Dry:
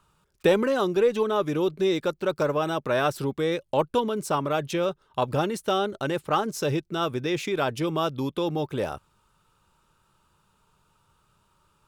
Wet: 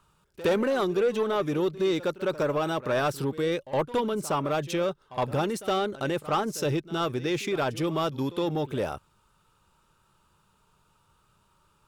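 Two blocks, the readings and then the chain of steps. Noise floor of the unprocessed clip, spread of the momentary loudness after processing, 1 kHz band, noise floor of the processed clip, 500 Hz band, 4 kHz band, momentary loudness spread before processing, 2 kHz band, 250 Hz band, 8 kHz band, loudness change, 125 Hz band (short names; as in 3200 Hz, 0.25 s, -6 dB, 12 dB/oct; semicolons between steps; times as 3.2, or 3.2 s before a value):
-68 dBFS, 4 LU, -2.0 dB, -67 dBFS, -2.0 dB, -2.0 dB, 6 LU, -1.5 dB, -1.0 dB, -0.5 dB, -2.0 dB, -1.0 dB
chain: soft clip -18.5 dBFS, distortion -15 dB; pre-echo 66 ms -17 dB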